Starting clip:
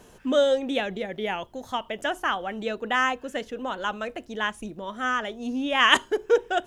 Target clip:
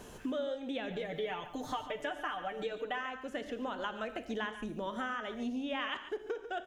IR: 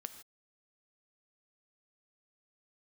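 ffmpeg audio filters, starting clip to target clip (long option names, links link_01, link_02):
-filter_complex "[0:a]acrossover=split=4600[link_01][link_02];[link_02]acompressor=threshold=-56dB:ratio=4:attack=1:release=60[link_03];[link_01][link_03]amix=inputs=2:normalize=0,asettb=1/sr,asplit=3[link_04][link_05][link_06];[link_04]atrim=end=0.904[link_07];[link_05]atrim=start=0.9:end=3.01,asetpts=PTS-STARTPTS,afade=type=in:duration=0.004:curve=qsin,afade=type=out:start_time=2.106:duration=0.004:curve=qsin,aecho=1:1:6.7:0.94,atrim=end_sample=93051[link_08];[link_06]atrim=start=3.006[link_09];[link_07][link_08]acrossfade=duration=0.004:curve1=hsin:curve2=qsin[link_10];[link_10][link_09]acrossfade=duration=0.004:curve1=qsin:curve2=hsin,acompressor=threshold=-36dB:ratio=12,aecho=1:1:144:0.224[link_11];[1:a]atrim=start_sample=2205,atrim=end_sample=6174[link_12];[link_11][link_12]afir=irnorm=-1:irlink=0,volume=5.5dB"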